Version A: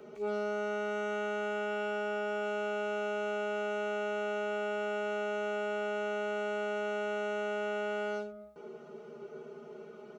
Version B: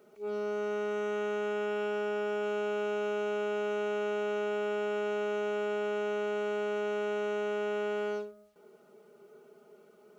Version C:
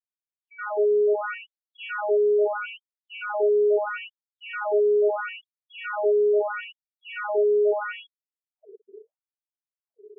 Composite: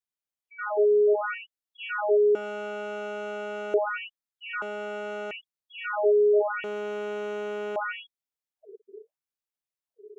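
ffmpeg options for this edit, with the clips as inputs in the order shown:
-filter_complex "[0:a]asplit=2[a][b];[2:a]asplit=4[c][d][e][f];[c]atrim=end=2.352[g];[a]atrim=start=2.348:end=3.742[h];[d]atrim=start=3.738:end=4.622[i];[b]atrim=start=4.618:end=5.312[j];[e]atrim=start=5.308:end=6.642[k];[1:a]atrim=start=6.638:end=7.762[l];[f]atrim=start=7.758[m];[g][h]acrossfade=d=0.004:c1=hsin:c2=hsin[n];[n][i]acrossfade=d=0.004:c1=hsin:c2=hsin[o];[o][j]acrossfade=d=0.004:c1=hsin:c2=hsin[p];[p][k]acrossfade=d=0.004:c1=hsin:c2=hsin[q];[q][l]acrossfade=d=0.004:c1=hsin:c2=hsin[r];[r][m]acrossfade=d=0.004:c1=hsin:c2=hsin"

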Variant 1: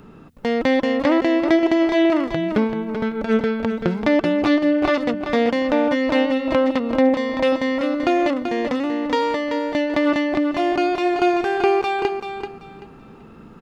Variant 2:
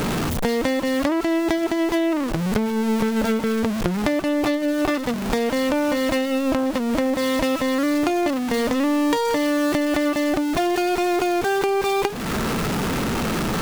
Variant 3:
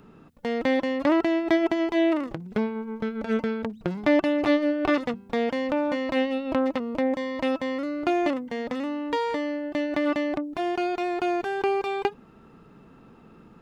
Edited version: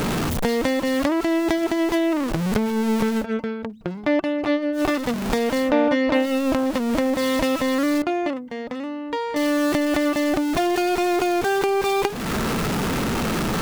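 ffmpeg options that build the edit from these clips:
-filter_complex "[2:a]asplit=2[a][b];[1:a]asplit=4[c][d][e][f];[c]atrim=end=3.26[g];[a]atrim=start=3.16:end=4.82[h];[d]atrim=start=4.72:end=5.73[i];[0:a]atrim=start=5.57:end=6.28[j];[e]atrim=start=6.12:end=8.022[k];[b]atrim=start=8.018:end=9.362[l];[f]atrim=start=9.358[m];[g][h]acrossfade=d=0.1:c1=tri:c2=tri[n];[n][i]acrossfade=d=0.1:c1=tri:c2=tri[o];[o][j]acrossfade=d=0.16:c1=tri:c2=tri[p];[p][k]acrossfade=d=0.16:c1=tri:c2=tri[q];[q][l]acrossfade=d=0.004:c1=hsin:c2=hsin[r];[r][m]acrossfade=d=0.004:c1=hsin:c2=hsin"

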